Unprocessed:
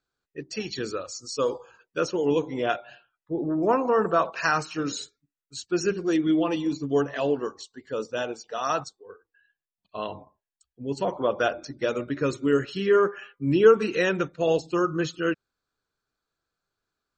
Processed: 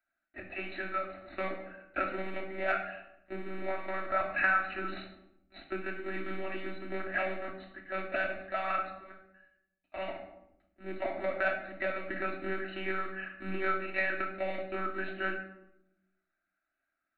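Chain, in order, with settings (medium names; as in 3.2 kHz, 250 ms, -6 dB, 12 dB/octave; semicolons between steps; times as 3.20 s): block-companded coder 5-bit; bass shelf 210 Hz -5.5 dB; in parallel at -8 dB: sample-rate reducer 1.4 kHz, jitter 0%; on the sum: monotone LPC vocoder at 8 kHz 190 Hz; compression 4:1, threshold -24 dBFS, peak gain reduction 13 dB; tilt EQ +4 dB/octave; static phaser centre 670 Hz, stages 8; simulated room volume 2300 m³, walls furnished, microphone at 2.9 m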